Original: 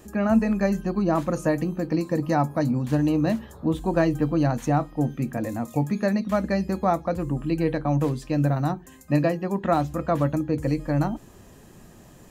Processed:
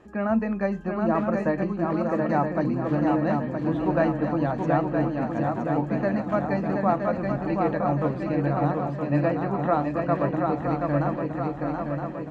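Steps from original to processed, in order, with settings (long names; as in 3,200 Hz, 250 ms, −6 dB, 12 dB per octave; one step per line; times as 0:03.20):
low-pass filter 1,700 Hz 12 dB per octave
spectral tilt +2 dB per octave
feedback echo with a long and a short gap by turns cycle 968 ms, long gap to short 3 to 1, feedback 57%, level −4 dB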